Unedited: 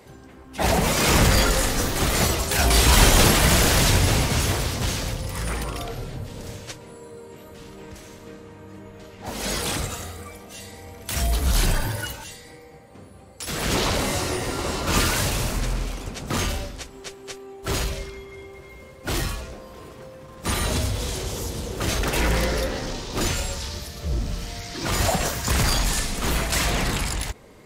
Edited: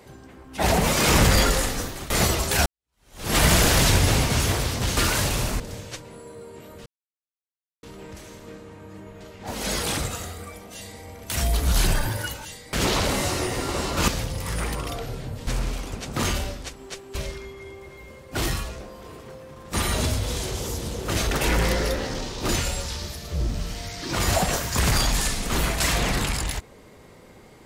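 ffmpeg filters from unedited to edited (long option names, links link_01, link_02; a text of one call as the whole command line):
ffmpeg -i in.wav -filter_complex "[0:a]asplit=10[link_01][link_02][link_03][link_04][link_05][link_06][link_07][link_08][link_09][link_10];[link_01]atrim=end=2.1,asetpts=PTS-STARTPTS,afade=type=out:start_time=1.48:duration=0.62:silence=0.11885[link_11];[link_02]atrim=start=2.1:end=2.66,asetpts=PTS-STARTPTS,afade=type=in:duration=0.004:curve=hsin:silence=0.11885,afade=type=out:start_time=0.556:duration=0.004:curve=hsin[link_12];[link_03]atrim=start=2.66:end=4.972,asetpts=PTS-STARTPTS,afade=type=in:duration=0.7:curve=exp[link_13];[link_04]atrim=start=14.978:end=15.612[link_14];[link_05]atrim=start=6.358:end=7.62,asetpts=PTS-STARTPTS,afade=type=out:start_time=1.258:duration=0.004:curve=hsin,apad=pad_dur=0.97[link_15];[link_06]atrim=start=7.62:end=12.522,asetpts=PTS-STARTPTS,afade=type=in:duration=0.004:curve=hsin[link_16];[link_07]atrim=start=13.628:end=14.982[link_17];[link_08]atrim=start=4.968:end=6.362[link_18];[link_09]atrim=start=15.608:end=17.292[link_19];[link_10]atrim=start=17.868[link_20];[link_11][link_12][link_13]concat=n=3:v=0:a=1[link_21];[link_21][link_14]acrossfade=duration=0.004:curve1=hsin:curve2=hsin[link_22];[link_15][link_16]concat=n=2:v=0:a=1[link_23];[link_22][link_23]acrossfade=duration=0.004:curve1=hsin:curve2=hsin[link_24];[link_24][link_17]acrossfade=duration=0.004:curve1=hsin:curve2=hsin[link_25];[link_25][link_18]acrossfade=duration=0.004:curve1=hsin:curve2=hsin[link_26];[link_26][link_19]acrossfade=duration=0.004:curve1=hsin:curve2=hsin[link_27];[link_27][link_20]acrossfade=duration=0.004:curve1=hsin:curve2=hsin" out.wav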